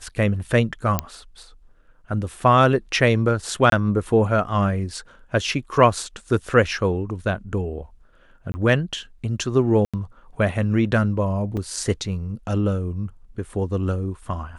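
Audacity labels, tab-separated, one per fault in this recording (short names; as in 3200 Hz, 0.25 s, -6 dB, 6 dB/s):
0.990000	0.990000	pop -5 dBFS
3.700000	3.720000	gap 22 ms
8.520000	8.540000	gap 20 ms
9.850000	9.940000	gap 86 ms
11.570000	11.570000	gap 3.8 ms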